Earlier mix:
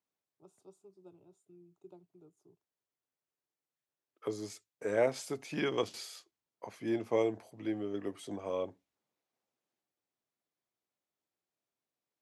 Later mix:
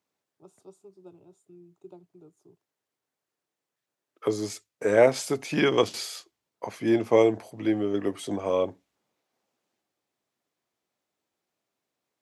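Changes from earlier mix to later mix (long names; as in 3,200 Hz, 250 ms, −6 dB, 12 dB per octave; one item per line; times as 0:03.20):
first voice +7.0 dB
second voice +10.5 dB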